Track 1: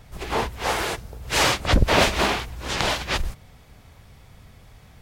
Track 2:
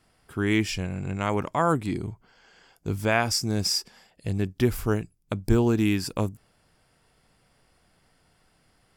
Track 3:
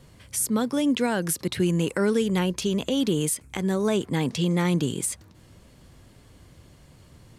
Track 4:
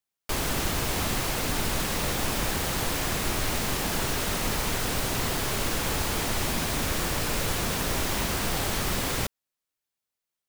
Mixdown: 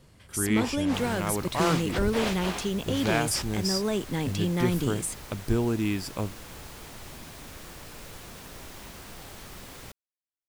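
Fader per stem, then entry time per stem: -13.0 dB, -4.5 dB, -4.5 dB, -16.0 dB; 0.25 s, 0.00 s, 0.00 s, 0.65 s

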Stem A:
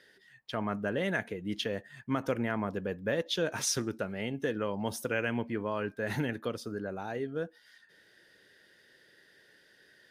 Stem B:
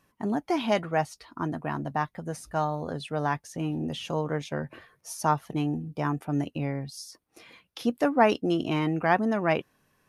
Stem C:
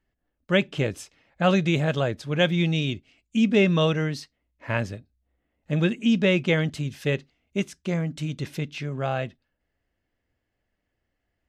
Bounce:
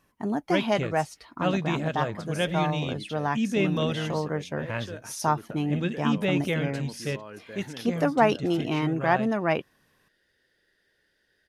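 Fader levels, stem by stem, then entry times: -9.0 dB, 0.0 dB, -6.0 dB; 1.50 s, 0.00 s, 0.00 s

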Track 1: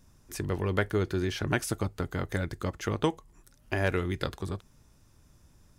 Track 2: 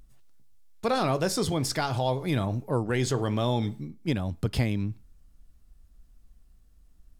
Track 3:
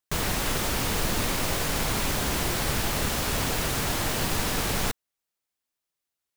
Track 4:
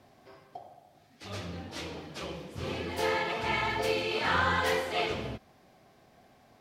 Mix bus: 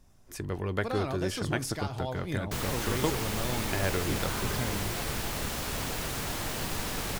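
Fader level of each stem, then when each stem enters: -3.0 dB, -9.0 dB, -6.5 dB, -15.5 dB; 0.00 s, 0.00 s, 2.40 s, 0.00 s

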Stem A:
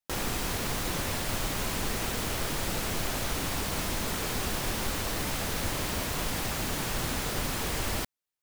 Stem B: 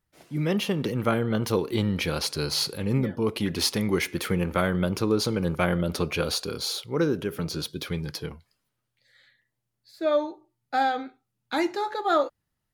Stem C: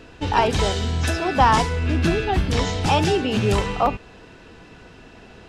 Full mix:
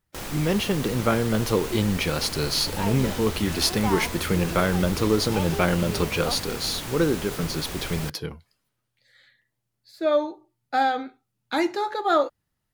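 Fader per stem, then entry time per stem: -3.0 dB, +2.0 dB, -13.5 dB; 0.05 s, 0.00 s, 2.45 s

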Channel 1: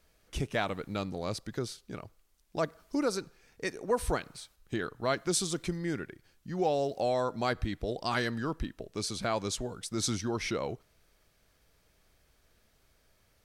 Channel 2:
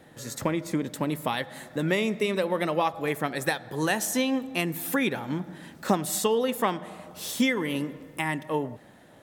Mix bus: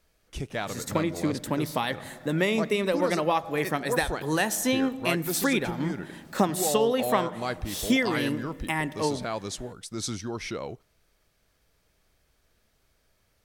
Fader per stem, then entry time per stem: -1.0 dB, +0.5 dB; 0.00 s, 0.50 s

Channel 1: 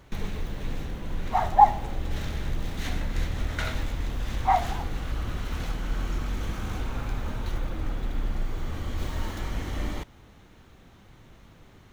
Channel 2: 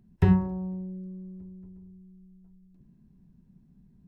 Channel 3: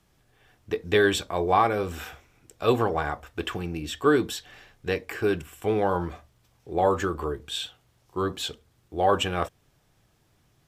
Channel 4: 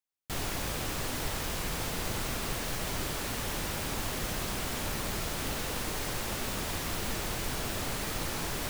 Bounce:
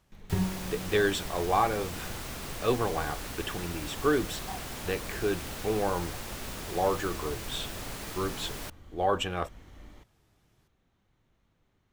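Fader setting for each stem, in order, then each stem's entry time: -19.5 dB, -8.5 dB, -5.0 dB, -5.0 dB; 0.00 s, 0.10 s, 0.00 s, 0.00 s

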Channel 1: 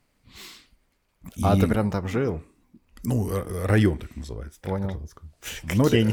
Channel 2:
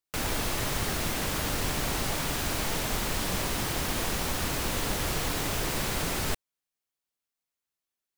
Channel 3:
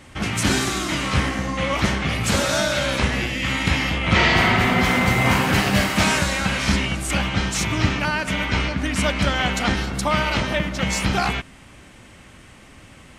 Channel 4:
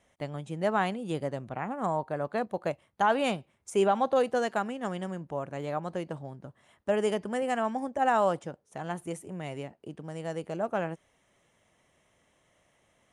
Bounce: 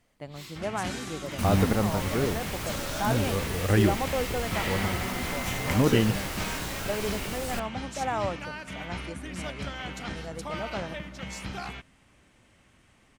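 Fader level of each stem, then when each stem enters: -3.0 dB, -6.0 dB, -15.5 dB, -5.0 dB; 0.00 s, 1.25 s, 0.40 s, 0.00 s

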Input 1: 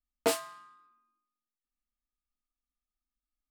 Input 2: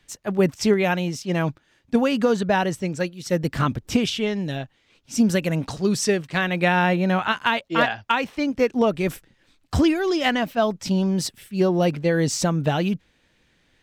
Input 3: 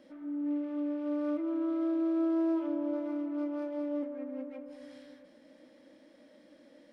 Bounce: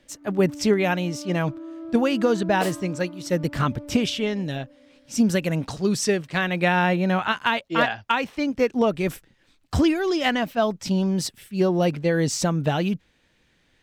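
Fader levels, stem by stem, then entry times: -3.5 dB, -1.0 dB, -5.5 dB; 2.35 s, 0.00 s, 0.00 s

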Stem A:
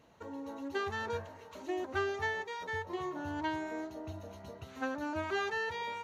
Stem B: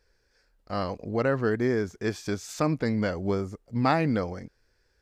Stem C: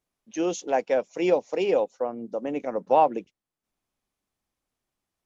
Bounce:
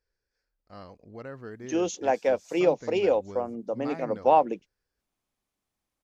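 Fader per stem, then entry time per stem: mute, -15.5 dB, -0.5 dB; mute, 0.00 s, 1.35 s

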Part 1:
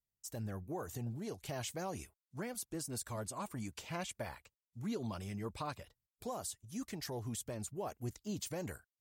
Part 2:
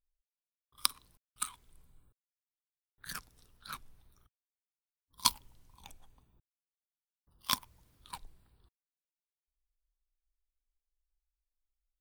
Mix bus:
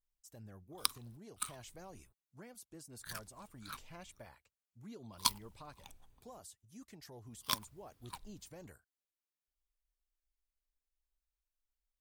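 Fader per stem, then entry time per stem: -11.5 dB, -3.5 dB; 0.00 s, 0.00 s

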